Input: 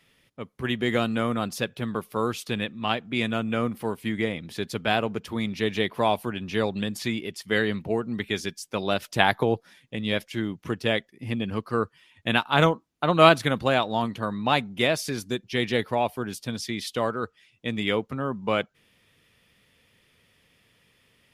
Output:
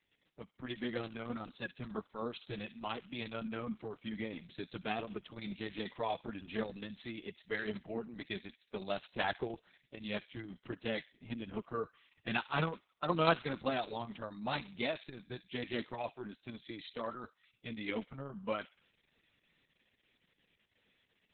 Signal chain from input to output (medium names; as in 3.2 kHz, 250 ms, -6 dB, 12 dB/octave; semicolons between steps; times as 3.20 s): coarse spectral quantiser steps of 15 dB; high-pass 53 Hz 6 dB/octave; flange 1.4 Hz, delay 2.8 ms, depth 4.2 ms, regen +34%; feedback echo behind a high-pass 65 ms, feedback 41%, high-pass 1.9 kHz, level -14 dB; trim -7 dB; Opus 6 kbps 48 kHz